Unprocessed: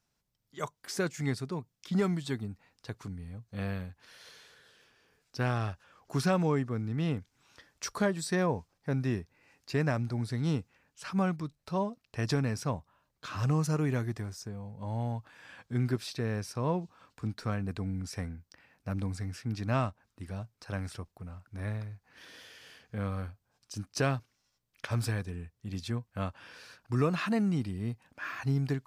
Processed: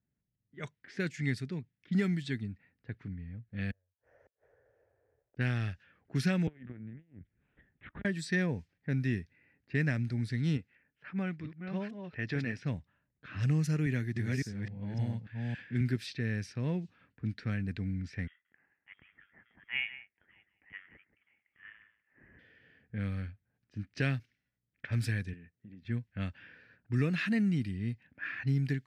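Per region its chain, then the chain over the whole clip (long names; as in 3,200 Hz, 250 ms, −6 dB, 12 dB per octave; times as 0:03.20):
0:03.71–0:05.37: variable-slope delta modulation 32 kbit/s + drawn EQ curve 120 Hz 0 dB, 180 Hz −25 dB, 570 Hz +14 dB, 4,100 Hz −23 dB, 6,200 Hz +5 dB + gate with flip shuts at −42 dBFS, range −39 dB
0:06.47–0:08.05: linear-prediction vocoder at 8 kHz pitch kept + saturating transformer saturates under 160 Hz
0:10.57–0:12.64: delay that plays each chunk backwards 446 ms, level −6 dB + bass and treble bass −7 dB, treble −12 dB
0:13.86–0:15.81: delay that plays each chunk backwards 281 ms, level −0.5 dB + high-pass filter 92 Hz
0:18.27–0:22.39: high-pass filter 1,000 Hz + single-tap delay 179 ms −12.5 dB + voice inversion scrambler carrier 3,500 Hz
0:25.33–0:25.85: high-pass filter 170 Hz + downward compressor, threshold −46 dBFS
whole clip: high-pass filter 54 Hz; low-pass that shuts in the quiet parts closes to 850 Hz, open at −28 dBFS; drawn EQ curve 240 Hz 0 dB, 1,100 Hz −17 dB, 1,800 Hz +5 dB, 6,800 Hz −6 dB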